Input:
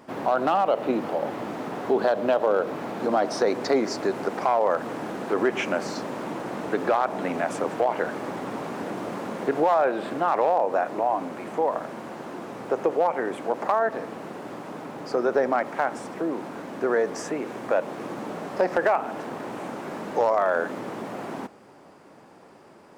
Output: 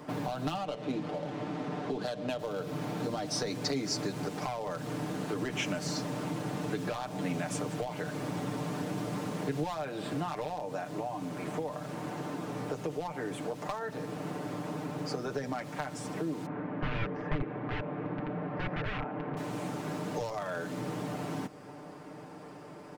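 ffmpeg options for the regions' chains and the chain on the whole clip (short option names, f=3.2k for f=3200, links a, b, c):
-filter_complex "[0:a]asettb=1/sr,asplit=3[a][b][c];[a]atrim=end=0.574[d];[b]atrim=start=0.57:end=2.39,asetpts=PTS-STARTPTS,afade=t=in:d=0.004:c=qsin,afade=t=out:st=1.816:d=0.004:c=qsin,highpass=150,adynamicsmooth=sensitivity=6.5:basefreq=3.6k[e];[c]atrim=start=2.386[f];[d][e]acrossfade=d=0.004:c1=hsin:c2=qsin[g];[g][f]acrossfade=d=0.004:c1=qsin:c2=hsin,asettb=1/sr,asplit=3[h][i][j];[h]atrim=end=16.464[k];[i]atrim=start=16.46:end=19.37,asetpts=PTS-STARTPTS,afade=t=in:d=0.004:c=qsin,afade=t=out:st=2.906:d=0.004:c=qsin,aeval=exprs='(mod(13.3*val(0)+1,2)-1)/13.3':c=same,lowpass=f=2.2k:w=0.5412,lowpass=f=2.2k:w=1.3066[l];[j]atrim=start=19.366[m];[k][l]acrossfade=d=0.004:c1=hsin:c2=qsin[n];[n][m]acrossfade=d=0.004:c1=qsin:c2=hsin,lowshelf=f=250:g=7,aecho=1:1:6.7:0.7,acrossover=split=170|3000[o][p][q];[p]acompressor=threshold=-36dB:ratio=6[r];[o][r][q]amix=inputs=3:normalize=0"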